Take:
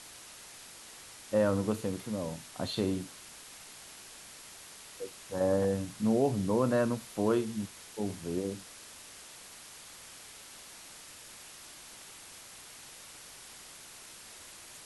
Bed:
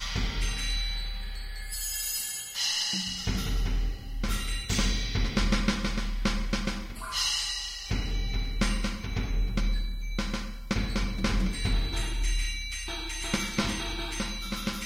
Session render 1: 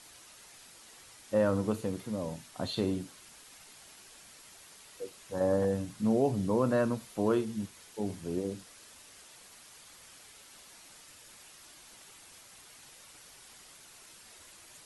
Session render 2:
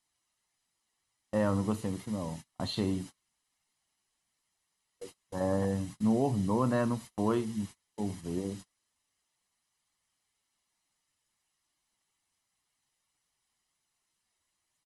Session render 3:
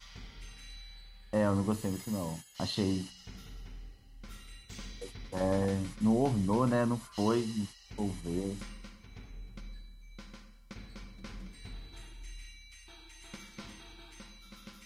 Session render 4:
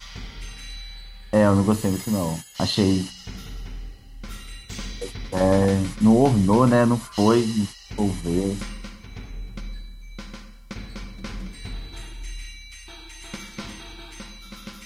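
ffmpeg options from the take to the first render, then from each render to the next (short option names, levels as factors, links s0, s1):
-af "afftdn=nr=6:nf=-51"
-af "agate=range=0.0398:threshold=0.00708:ratio=16:detection=peak,aecho=1:1:1:0.41"
-filter_complex "[1:a]volume=0.119[s0];[0:a][s0]amix=inputs=2:normalize=0"
-af "volume=3.76"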